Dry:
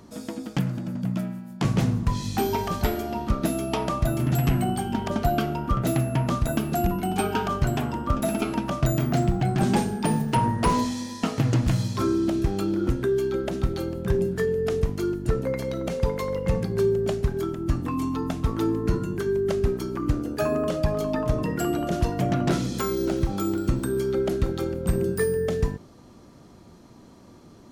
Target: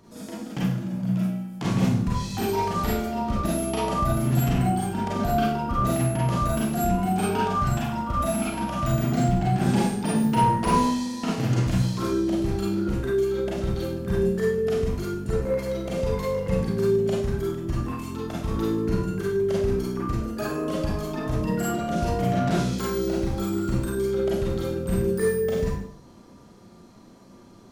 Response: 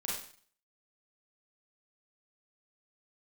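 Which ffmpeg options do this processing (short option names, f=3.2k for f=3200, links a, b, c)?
-filter_complex "[0:a]asettb=1/sr,asplit=3[a][b][c];[a]atrim=end=7.484[d];[b]atrim=start=7.48:end=8.91,asetpts=PTS-STARTPTS,afade=t=in:d=0.004:c=qsin,afade=t=out:st=1.426:d=0.004:c=qsin,equalizer=f=410:w=3.4:g=-12[e];[c]atrim=start=8.906[f];[d][e]acrossfade=d=0.004:c1=hsin:c2=qsin[g];[g][f]acrossfade=d=0.004:c1=qsin:c2=hsin[h];[1:a]atrim=start_sample=2205[i];[h][i]afir=irnorm=-1:irlink=0,volume=-2.5dB"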